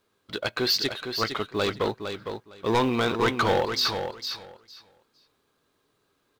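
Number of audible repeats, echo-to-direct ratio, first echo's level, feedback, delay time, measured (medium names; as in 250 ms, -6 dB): 2, -7.5 dB, -7.5 dB, 17%, 458 ms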